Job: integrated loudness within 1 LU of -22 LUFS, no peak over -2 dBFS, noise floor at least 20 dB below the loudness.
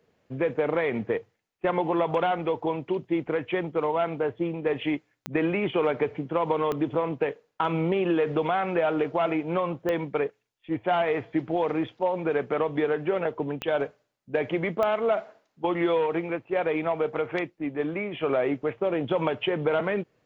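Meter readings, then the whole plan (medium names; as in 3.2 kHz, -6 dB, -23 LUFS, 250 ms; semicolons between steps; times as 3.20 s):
clicks found 5; loudness -27.5 LUFS; peak level -11.5 dBFS; loudness target -22.0 LUFS
-> de-click; trim +5.5 dB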